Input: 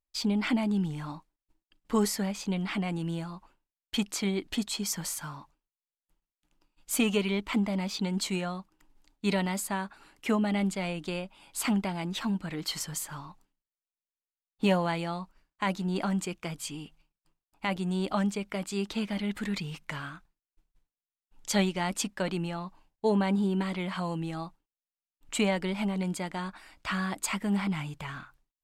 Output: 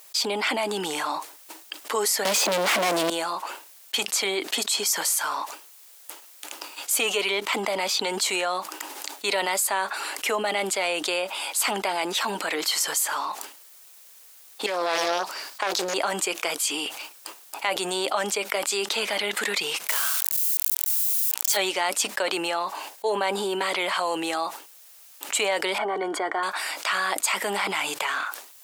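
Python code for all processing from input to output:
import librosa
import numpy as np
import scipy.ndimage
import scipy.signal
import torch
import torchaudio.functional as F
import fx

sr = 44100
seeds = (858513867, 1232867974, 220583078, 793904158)

y = fx.chain(x, sr, fx.leveller(passes=5),
    fx.low_shelf(hz=500.0, db=11.0),
    fx.band_squash(depth_pct=70), at=(2.25, 3.1))
y = fx.chain(y, sr, fx.peak_eq(hz=4800.0, db=7.5, octaves=0.5),
    fx.over_compress(threshold_db=-32.0, ratio=-1.0),
    fx.doppler_dist(depth_ms=0.81), at=(14.66, 15.94))
y = fx.chain(y, sr, fx.crossing_spikes(level_db=-27.5),
    fx.low_shelf(hz=410.0, db=-8.0), at=(19.88, 21.57))
y = fx.chain(y, sr, fx.savgol(points=41),
    fx.comb(ms=2.7, depth=0.52), at=(25.78, 26.43))
y = scipy.signal.sosfilt(scipy.signal.butter(4, 430.0, 'highpass', fs=sr, output='sos'), y)
y = fx.high_shelf(y, sr, hz=5300.0, db=8.0)
y = fx.env_flatten(y, sr, amount_pct=70)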